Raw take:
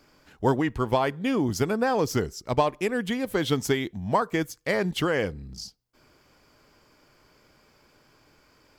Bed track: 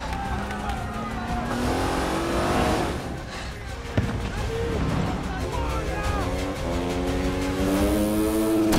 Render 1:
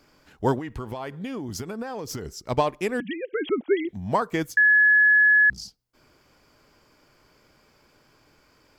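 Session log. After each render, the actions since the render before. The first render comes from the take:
0:00.58–0:02.26: downward compressor 16 to 1, threshold −28 dBFS
0:03.00–0:03.89: three sine waves on the formant tracks
0:04.57–0:05.50: beep over 1,700 Hz −13.5 dBFS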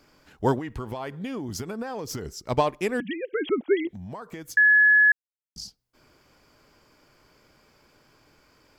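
0:03.87–0:04.48: downward compressor, threshold −35 dBFS
0:05.12–0:05.56: silence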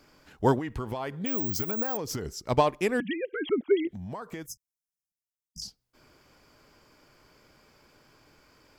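0:01.26–0:01.97: bad sample-rate conversion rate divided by 2×, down filtered, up zero stuff
0:03.27–0:03.92: flanger swept by the level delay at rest 2.6 ms, full sweep at −19 dBFS
0:04.46–0:05.62: linear-phase brick-wall band-stop 230–4,900 Hz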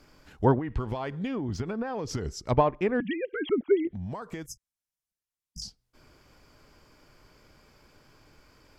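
treble cut that deepens with the level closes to 1,800 Hz, closed at −23 dBFS
low-shelf EQ 96 Hz +9.5 dB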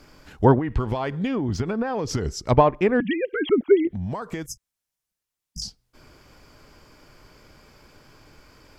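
level +6.5 dB
brickwall limiter −3 dBFS, peak gain reduction 1.5 dB

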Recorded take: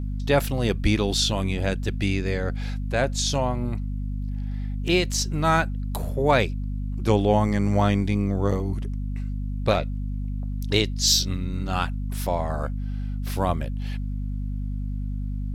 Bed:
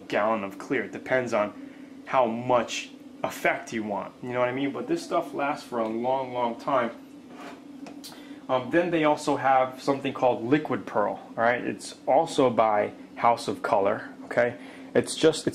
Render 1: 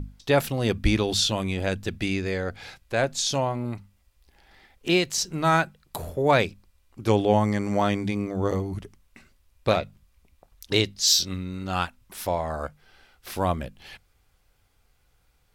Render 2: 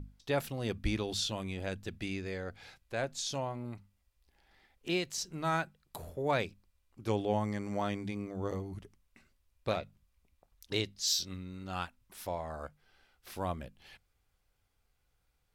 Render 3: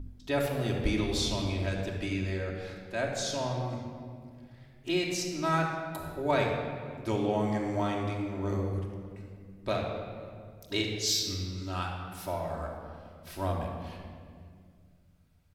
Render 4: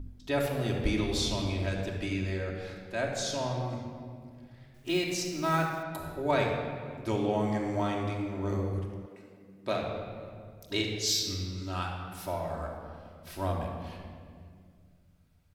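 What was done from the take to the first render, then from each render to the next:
mains-hum notches 50/100/150/200/250 Hz
level −11 dB
slap from a distant wall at 90 metres, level −22 dB; rectangular room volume 3,600 cubic metres, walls mixed, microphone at 2.8 metres
0:04.74–0:05.83: log-companded quantiser 6 bits; 0:09.05–0:09.83: high-pass filter 330 Hz → 130 Hz

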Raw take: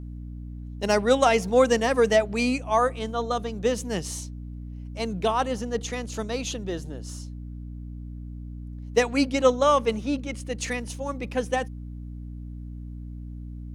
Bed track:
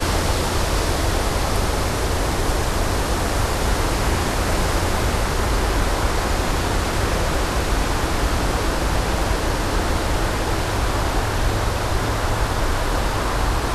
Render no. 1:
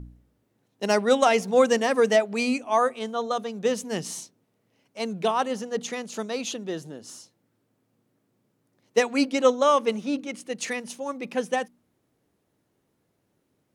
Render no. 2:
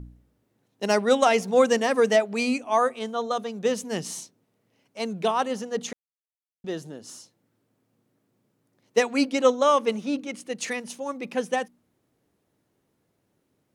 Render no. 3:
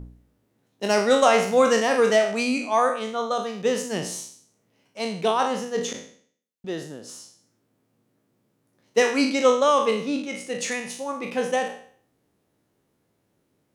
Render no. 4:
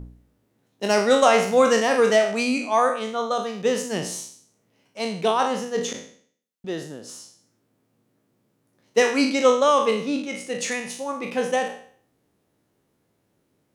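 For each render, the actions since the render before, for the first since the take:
hum removal 60 Hz, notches 5
0:05.93–0:06.64: silence
peak hold with a decay on every bin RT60 0.54 s
level +1 dB

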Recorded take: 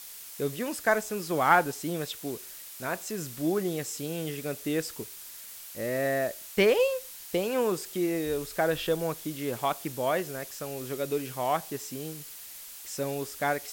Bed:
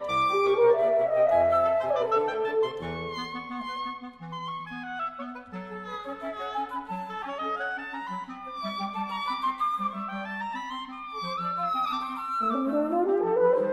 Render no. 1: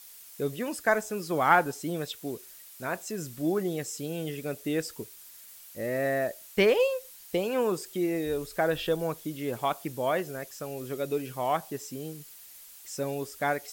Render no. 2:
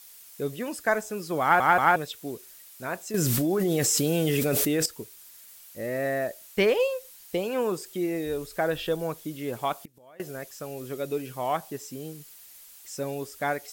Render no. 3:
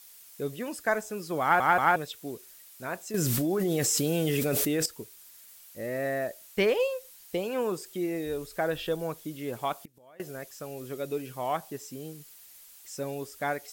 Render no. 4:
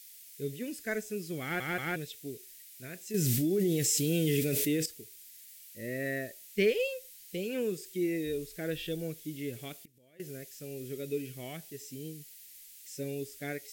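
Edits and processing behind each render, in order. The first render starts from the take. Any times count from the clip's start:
broadband denoise 7 dB, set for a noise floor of −45 dBFS
0:01.42: stutter in place 0.18 s, 3 plays; 0:03.14–0:04.86: envelope flattener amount 100%; 0:09.80–0:10.20: gate with flip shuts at −30 dBFS, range −25 dB
level −2.5 dB
harmonic and percussive parts rebalanced percussive −9 dB; drawn EQ curve 420 Hz 0 dB, 980 Hz −22 dB, 2,000 Hz +3 dB

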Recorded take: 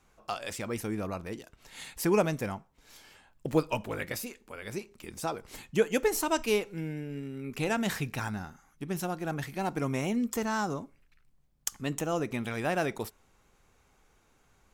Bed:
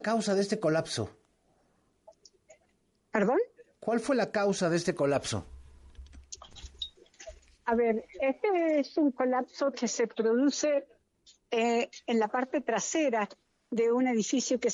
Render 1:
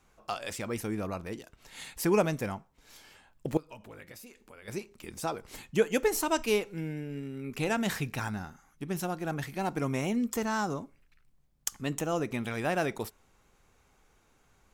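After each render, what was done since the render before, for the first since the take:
0:03.57–0:04.68: downward compressor 2.5 to 1, threshold −51 dBFS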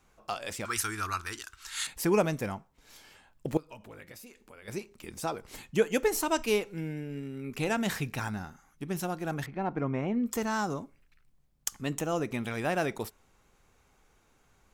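0:00.65–0:01.87: drawn EQ curve 100 Hz 0 dB, 150 Hz −17 dB, 370 Hz −4 dB, 560 Hz −18 dB, 830 Hz −2 dB, 1,400 Hz +15 dB, 2,100 Hz +6 dB, 4,100 Hz +12 dB, 8,700 Hz +14 dB, 15,000 Hz +6 dB
0:09.46–0:10.26: low-pass filter 1,800 Hz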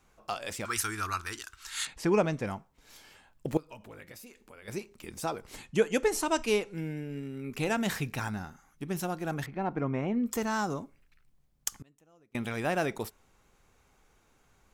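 0:01.85–0:02.47: high-frequency loss of the air 73 metres
0:05.55–0:06.74: low-pass filter 11,000 Hz 24 dB per octave
0:11.69–0:12.35: gate with flip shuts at −34 dBFS, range −32 dB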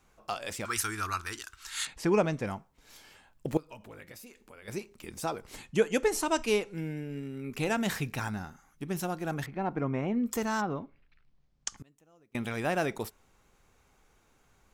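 0:10.60–0:11.76: low-pass filter 3,000 Hz → 7,500 Hz 24 dB per octave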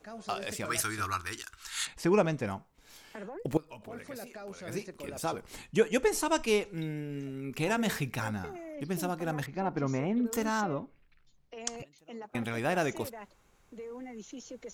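mix in bed −16.5 dB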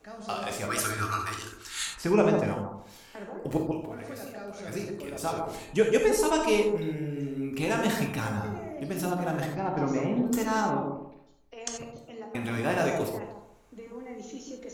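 bucket-brigade delay 141 ms, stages 1,024, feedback 30%, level −3 dB
reverb whose tail is shaped and stops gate 110 ms flat, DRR 2.5 dB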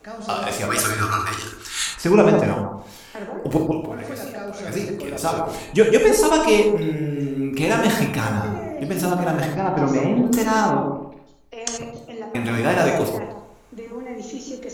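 level +8.5 dB
brickwall limiter −2 dBFS, peak gain reduction 1 dB

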